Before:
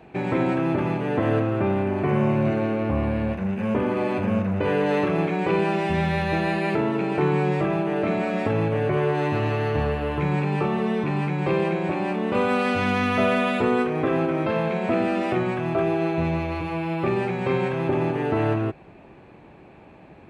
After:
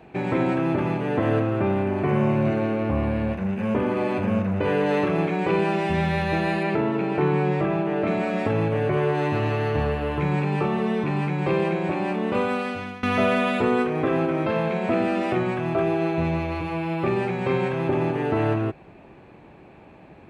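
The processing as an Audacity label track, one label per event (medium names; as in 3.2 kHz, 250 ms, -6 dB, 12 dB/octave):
6.630000	8.070000	treble shelf 6.4 kHz -11 dB
12.280000	13.030000	fade out, to -20.5 dB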